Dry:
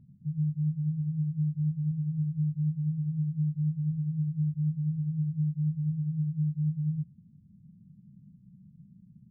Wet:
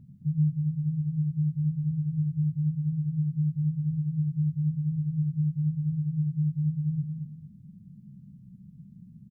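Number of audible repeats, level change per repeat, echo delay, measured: 2, -11.5 dB, 0.223 s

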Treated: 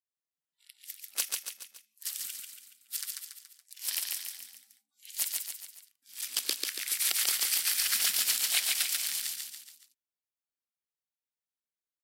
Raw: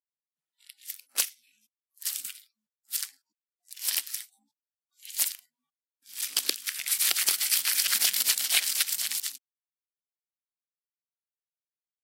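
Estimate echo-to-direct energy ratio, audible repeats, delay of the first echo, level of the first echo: -2.0 dB, 4, 0.141 s, -3.0 dB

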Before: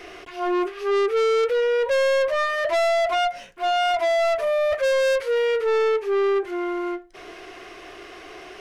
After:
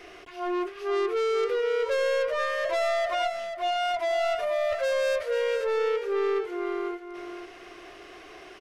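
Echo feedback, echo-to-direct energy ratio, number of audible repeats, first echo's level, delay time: 16%, -8.0 dB, 2, -8.0 dB, 0.488 s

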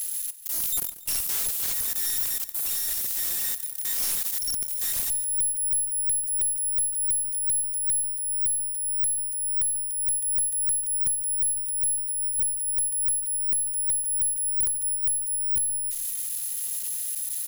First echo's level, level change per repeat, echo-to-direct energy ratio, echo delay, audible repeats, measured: -16.0 dB, -6.0 dB, -15.0 dB, 0.141 s, 3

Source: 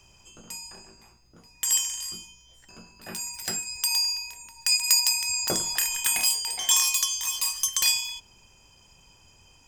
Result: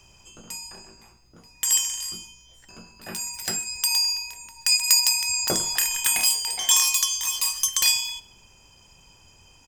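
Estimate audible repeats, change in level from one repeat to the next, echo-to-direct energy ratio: 2, -10.0 dB, -23.5 dB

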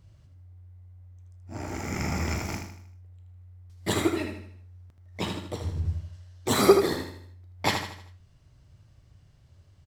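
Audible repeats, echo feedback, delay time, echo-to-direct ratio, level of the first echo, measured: 4, 43%, 78 ms, -5.5 dB, -6.5 dB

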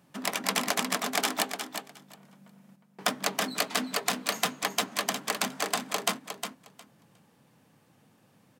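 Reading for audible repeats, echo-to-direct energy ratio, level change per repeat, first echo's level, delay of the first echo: 2, -8.0 dB, -16.0 dB, -8.0 dB, 0.359 s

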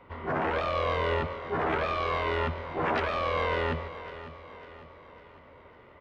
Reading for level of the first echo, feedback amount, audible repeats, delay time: -14.0 dB, 49%, 4, 0.551 s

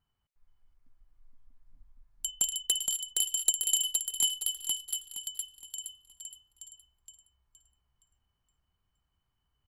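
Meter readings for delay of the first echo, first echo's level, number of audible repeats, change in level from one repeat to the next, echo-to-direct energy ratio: 0.468 s, -3.5 dB, 4, -9.0 dB, -3.0 dB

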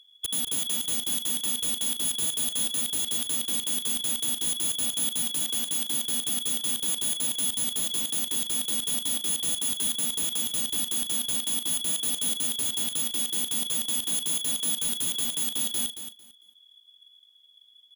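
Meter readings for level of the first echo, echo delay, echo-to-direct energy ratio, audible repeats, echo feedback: -10.0 dB, 0.225 s, -10.0 dB, 2, 19%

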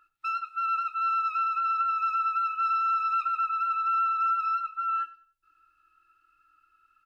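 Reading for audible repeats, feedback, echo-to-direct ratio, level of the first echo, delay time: 2, 30%, -18.0 dB, -18.5 dB, 97 ms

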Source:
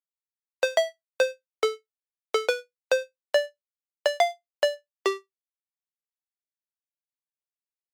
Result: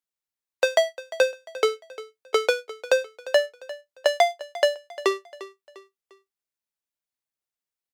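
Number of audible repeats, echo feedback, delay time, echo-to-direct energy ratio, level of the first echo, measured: 3, 40%, 0.35 s, -16.5 dB, -17.0 dB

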